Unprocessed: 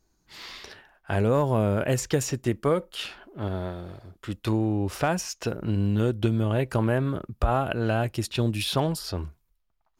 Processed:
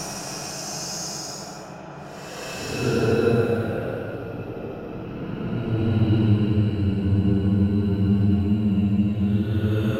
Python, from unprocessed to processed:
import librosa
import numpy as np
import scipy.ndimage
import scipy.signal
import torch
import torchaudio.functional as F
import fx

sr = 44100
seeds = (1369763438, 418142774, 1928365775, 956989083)

y = fx.rev_spring(x, sr, rt60_s=2.4, pass_ms=(35,), chirp_ms=75, drr_db=8.5)
y = fx.transient(y, sr, attack_db=7, sustain_db=0)
y = fx.paulstretch(y, sr, seeds[0], factor=13.0, window_s=0.1, from_s=5.23)
y = y * 10.0 ** (1.0 / 20.0)